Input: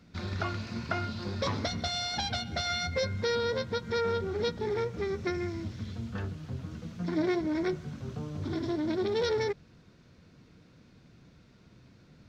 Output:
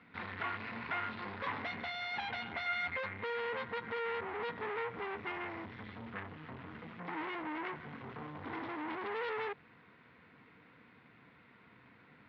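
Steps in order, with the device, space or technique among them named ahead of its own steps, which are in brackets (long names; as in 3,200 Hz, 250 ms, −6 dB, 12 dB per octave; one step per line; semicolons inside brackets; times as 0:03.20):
guitar amplifier (tube saturation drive 40 dB, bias 0.6; bass and treble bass −13 dB, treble −13 dB; loudspeaker in its box 100–3,400 Hz, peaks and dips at 170 Hz −3 dB, 360 Hz −8 dB, 590 Hz −9 dB, 1,000 Hz +4 dB, 2,000 Hz +7 dB)
level +7 dB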